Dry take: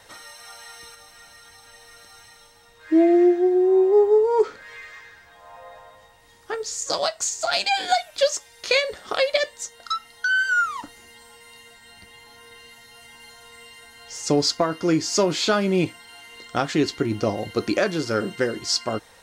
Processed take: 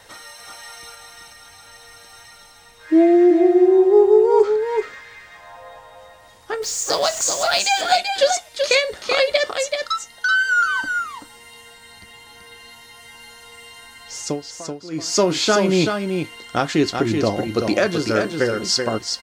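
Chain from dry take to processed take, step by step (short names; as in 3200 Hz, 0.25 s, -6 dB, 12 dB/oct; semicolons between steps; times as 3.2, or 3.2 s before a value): 6.62–7.59 zero-crossing step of -32.5 dBFS; 14.2–15.1 dip -19 dB, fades 0.20 s; echo 0.382 s -5.5 dB; gain +3 dB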